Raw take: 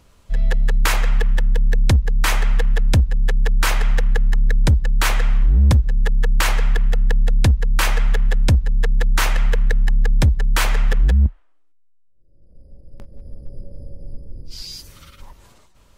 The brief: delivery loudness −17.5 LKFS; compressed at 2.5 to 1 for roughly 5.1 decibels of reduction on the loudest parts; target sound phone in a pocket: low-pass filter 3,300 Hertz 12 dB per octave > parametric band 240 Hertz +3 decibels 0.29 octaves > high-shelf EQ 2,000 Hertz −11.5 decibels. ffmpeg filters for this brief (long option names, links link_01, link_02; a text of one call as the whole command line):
ffmpeg -i in.wav -af "acompressor=threshold=-19dB:ratio=2.5,lowpass=3300,equalizer=frequency=240:width_type=o:width=0.29:gain=3,highshelf=frequency=2000:gain=-11.5,volume=7.5dB" out.wav